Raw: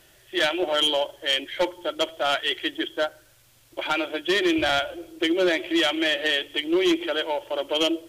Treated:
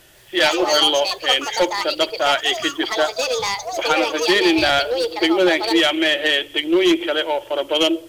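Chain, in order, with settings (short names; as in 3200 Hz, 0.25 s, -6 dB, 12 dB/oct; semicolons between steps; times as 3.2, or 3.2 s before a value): echoes that change speed 0.155 s, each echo +6 st, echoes 2, each echo -6 dB; gain +5.5 dB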